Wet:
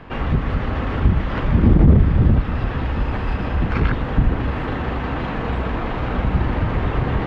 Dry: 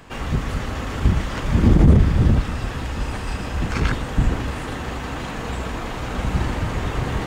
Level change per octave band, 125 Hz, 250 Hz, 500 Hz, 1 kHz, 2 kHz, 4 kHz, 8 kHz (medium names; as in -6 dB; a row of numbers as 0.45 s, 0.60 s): +2.0 dB, +2.0 dB, +2.5 dB, +2.5 dB, +1.0 dB, -3.5 dB, under -20 dB